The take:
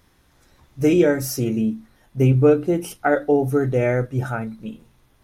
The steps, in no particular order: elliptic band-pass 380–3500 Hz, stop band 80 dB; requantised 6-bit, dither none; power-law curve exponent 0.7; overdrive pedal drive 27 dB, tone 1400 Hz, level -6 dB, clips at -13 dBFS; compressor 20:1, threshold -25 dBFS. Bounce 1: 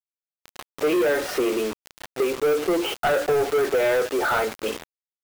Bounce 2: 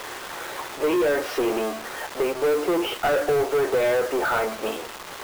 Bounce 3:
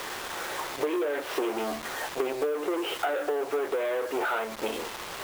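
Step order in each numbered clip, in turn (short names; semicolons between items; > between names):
compressor > elliptic band-pass > overdrive pedal > requantised > power-law curve; compressor > power-law curve > elliptic band-pass > overdrive pedal > requantised; overdrive pedal > power-law curve > elliptic band-pass > requantised > compressor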